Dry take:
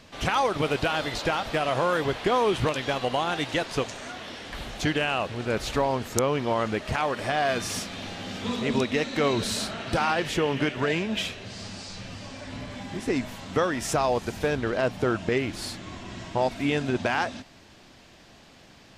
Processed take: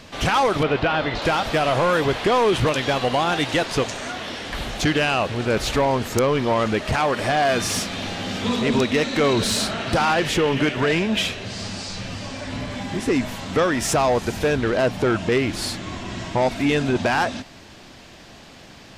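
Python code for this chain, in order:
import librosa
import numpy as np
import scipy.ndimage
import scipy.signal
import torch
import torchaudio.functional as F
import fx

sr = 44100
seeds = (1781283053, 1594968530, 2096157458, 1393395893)

y = 10.0 ** (-20.5 / 20.0) * np.tanh(x / 10.0 ** (-20.5 / 20.0))
y = fx.lowpass(y, sr, hz=2900.0, slope=12, at=(0.63, 1.22))
y = F.gain(torch.from_numpy(y), 8.0).numpy()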